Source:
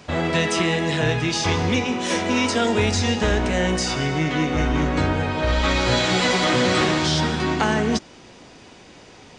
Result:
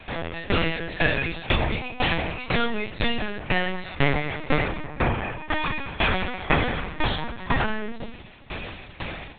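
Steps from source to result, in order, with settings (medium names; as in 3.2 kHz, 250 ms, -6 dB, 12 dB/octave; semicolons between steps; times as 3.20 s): treble shelf 2.9 kHz +4.5 dB, from 4.86 s -6.5 dB, from 7.39 s +3.5 dB; level rider gain up to 15 dB; peak limiter -6.5 dBFS, peak gain reduction 5.5 dB; compression 1.5:1, threshold -23 dBFS, peak gain reduction 4.5 dB; reverberation RT60 0.45 s, pre-delay 3 ms, DRR 1 dB; LPC vocoder at 8 kHz pitch kept; sawtooth tremolo in dB decaying 2 Hz, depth 19 dB; trim +1 dB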